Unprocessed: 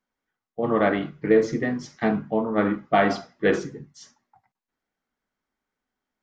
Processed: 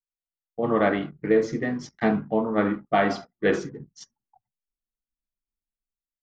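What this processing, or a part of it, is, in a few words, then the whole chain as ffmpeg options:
voice memo with heavy noise removal: -af "anlmdn=0.0251,dynaudnorm=f=160:g=5:m=4.73,volume=0.376"

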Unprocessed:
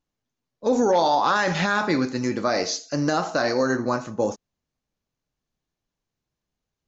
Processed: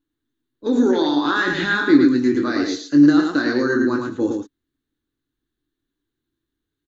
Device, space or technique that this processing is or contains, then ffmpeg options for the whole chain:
slapback doubling: -filter_complex "[0:a]firequalizer=gain_entry='entry(130,0);entry(190,-7);entry(290,14);entry(580,-13);entry(1600,4);entry(2400,-7);entry(3700,5);entry(5200,-12);entry(8700,0)':delay=0.05:min_phase=1,asplit=3[s0][s1][s2];[s1]adelay=21,volume=0.447[s3];[s2]adelay=109,volume=0.631[s4];[s0][s3][s4]amix=inputs=3:normalize=0"

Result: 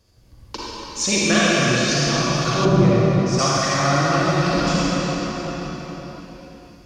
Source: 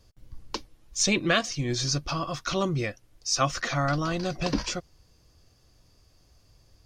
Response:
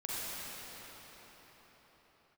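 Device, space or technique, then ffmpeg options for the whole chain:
cathedral: -filter_complex "[0:a]highpass=43[s0];[1:a]atrim=start_sample=2205[s1];[s0][s1]afir=irnorm=-1:irlink=0,asettb=1/sr,asplit=3[s2][s3][s4];[s2]atrim=end=2.654[s5];[s3]atrim=start=2.65:end=3.39,asetpts=PTS-STARTPTS,afade=t=in:d=0.004:c=qsin,afade=t=out:st=0.736:d=0.004:c=qsin,tiltshelf=f=890:g=7[s6];[s4]atrim=start=3.386[s7];[s5][s6]acrossfade=d=0.004:c1=hsin:c2=qsin[s8];[s8][s7]acrossfade=d=0.004:c1=qsin:c2=hsin,volume=1.68"

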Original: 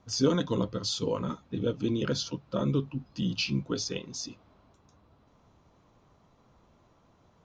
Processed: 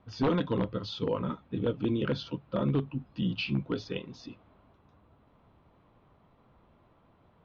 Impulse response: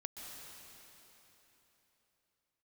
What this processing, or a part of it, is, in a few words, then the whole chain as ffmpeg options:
synthesiser wavefolder: -af "aeval=exprs='0.106*(abs(mod(val(0)/0.106+3,4)-2)-1)':c=same,lowpass=f=3400:w=0.5412,lowpass=f=3400:w=1.3066"

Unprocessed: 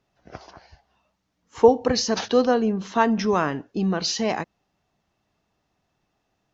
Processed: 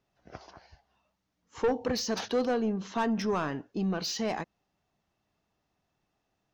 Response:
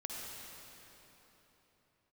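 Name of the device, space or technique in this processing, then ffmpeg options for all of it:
saturation between pre-emphasis and de-emphasis: -af "highshelf=f=2000:g=8.5,asoftclip=type=tanh:threshold=0.168,highshelf=f=2000:g=-8.5,volume=0.531"

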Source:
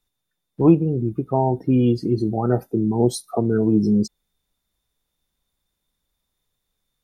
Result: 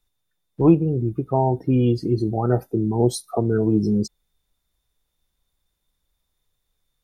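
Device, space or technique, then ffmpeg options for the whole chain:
low shelf boost with a cut just above: -af "lowshelf=f=71:g=6.5,equalizer=f=220:t=o:w=0.67:g=-4"

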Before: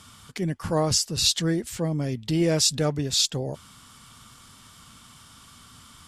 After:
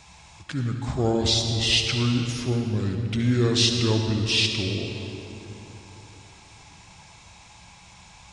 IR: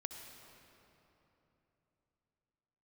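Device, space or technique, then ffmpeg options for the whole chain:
slowed and reverbed: -filter_complex "[0:a]asetrate=32193,aresample=44100[s0];[1:a]atrim=start_sample=2205[s1];[s0][s1]afir=irnorm=-1:irlink=0,volume=1.41"

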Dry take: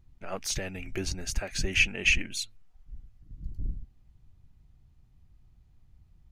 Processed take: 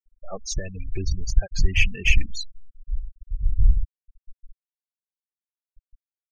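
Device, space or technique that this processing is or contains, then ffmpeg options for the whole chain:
parallel distortion: -filter_complex "[0:a]asettb=1/sr,asplit=3[s0][s1][s2];[s0]atrim=end=2.154[s3];[s1]atrim=start=2.15:end=3.54,asetpts=PTS-STARTPTS,afade=t=in:d=0.004:c=qsin,afade=t=out:st=1.386:d=0.004:c=qsin,bandreject=f=60:t=h:w=6,bandreject=f=120:t=h:w=6[s4];[s2]atrim=start=3.536[s5];[s3][s4]acrossfade=d=0.004:c1=hsin:c2=qsin[s6];[s6][s5]acrossfade=d=0.004:c1=qsin:c2=hsin,afftfilt=real='re*gte(hypot(re,im),0.0447)':imag='im*gte(hypot(re,im),0.0447)':win_size=1024:overlap=0.75,asubboost=boost=8.5:cutoff=120,asplit=2[s7][s8];[s8]asoftclip=type=hard:threshold=0.0891,volume=0.316[s9];[s7][s9]amix=inputs=2:normalize=0"

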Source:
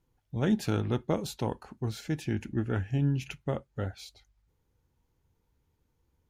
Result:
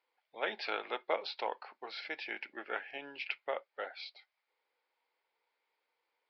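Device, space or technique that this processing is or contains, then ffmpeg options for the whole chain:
musical greeting card: -af "aresample=11025,aresample=44100,highpass=f=550:w=0.5412,highpass=f=550:w=1.3066,equalizer=f=2200:t=o:w=0.34:g=9,volume=1.12"

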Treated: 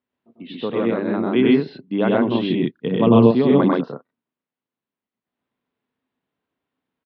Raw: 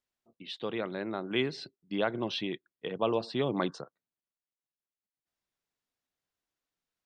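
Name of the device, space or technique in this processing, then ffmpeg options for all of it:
kitchen radio: -filter_complex "[0:a]lowpass=6700,aemphasis=mode=reproduction:type=bsi,asettb=1/sr,asplit=3[s0][s1][s2];[s0]atrim=end=2.504[s3];[s1]atrim=start=2.5:end=3.18,asetpts=PTS-STARTPTS,afade=t=in:d=0.004:c=qsin,afade=t=out:st=0.676:d=0.004:c=qsin,bass=f=250:g=13,treble=f=4000:g=13[s4];[s2]atrim=start=3.176[s5];[s3][s4]acrossfade=d=0.004:c1=hsin:c2=qsin[s6];[s6][s5]acrossfade=d=0.004:c1=qsin:c2=hsin,highpass=160,equalizer=f=250:t=q:w=4:g=9,equalizer=f=440:t=q:w=4:g=4,equalizer=f=1000:t=q:w=4:g=4,lowpass=f=3800:w=0.5412,lowpass=f=3800:w=1.3066,aecho=1:1:96.21|131.2:0.891|1,volume=1.68"

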